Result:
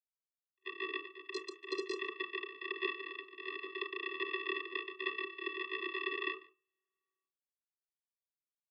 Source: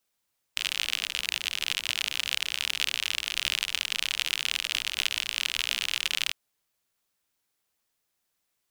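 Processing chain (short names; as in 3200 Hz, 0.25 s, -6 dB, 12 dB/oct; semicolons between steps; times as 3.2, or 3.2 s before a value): reverse delay 0.105 s, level -6.5 dB; gate -27 dBFS, range -55 dB; mistuned SSB -59 Hz 220–2500 Hz; 5.13–5.55 comb 4.7 ms, depth 64%; in parallel at +1.5 dB: limiter -24 dBFS, peak gain reduction 7.5 dB; 1.33–1.94 on the sum: wrapped overs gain 22 dB; 2.9–3.69 compressor 2.5:1, threshold -36 dBFS, peak gain reduction 7 dB; vocoder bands 16, square 379 Hz; outdoor echo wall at 25 m, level -21 dB; reverb RT60 0.30 s, pre-delay 25 ms, DRR 9 dB; harmonic-percussive split harmonic -8 dB; gain +2.5 dB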